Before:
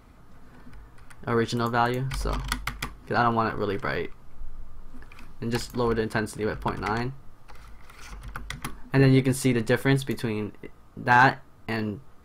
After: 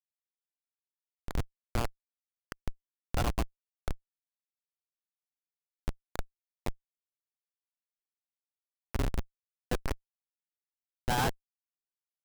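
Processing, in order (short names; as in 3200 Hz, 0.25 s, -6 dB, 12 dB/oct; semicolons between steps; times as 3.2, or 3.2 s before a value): octaver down 2 oct, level +3 dB; three-band isolator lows -21 dB, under 430 Hz, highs -22 dB, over 2300 Hz; in parallel at -7 dB: crossover distortion -46 dBFS; on the sum: low shelf 430 Hz +5 dB; Schmitt trigger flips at -15 dBFS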